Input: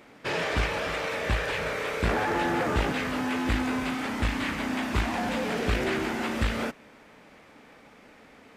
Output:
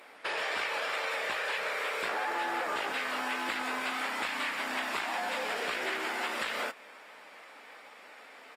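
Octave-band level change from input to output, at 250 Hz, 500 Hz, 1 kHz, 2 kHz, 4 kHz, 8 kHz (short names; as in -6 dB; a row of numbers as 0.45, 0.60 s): -15.5, -7.0, -2.0, -1.0, -1.0, -2.5 dB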